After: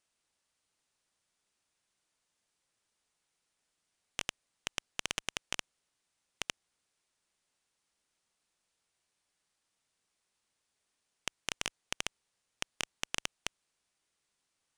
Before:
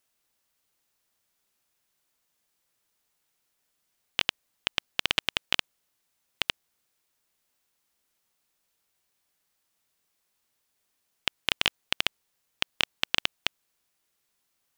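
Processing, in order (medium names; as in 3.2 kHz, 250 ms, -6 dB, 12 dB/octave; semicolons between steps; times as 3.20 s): resampled via 22.05 kHz; transformer saturation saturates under 3.2 kHz; trim -3 dB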